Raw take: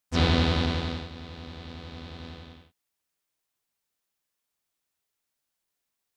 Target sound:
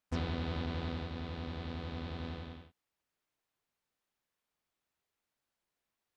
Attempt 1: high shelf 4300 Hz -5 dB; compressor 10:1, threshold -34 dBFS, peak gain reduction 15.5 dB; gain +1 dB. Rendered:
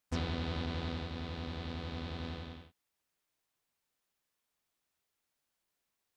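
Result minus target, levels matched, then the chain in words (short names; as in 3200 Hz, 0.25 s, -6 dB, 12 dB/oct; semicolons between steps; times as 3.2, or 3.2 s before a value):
8000 Hz band +5.0 dB
high shelf 4300 Hz -12.5 dB; compressor 10:1, threshold -34 dBFS, peak gain reduction 15.5 dB; gain +1 dB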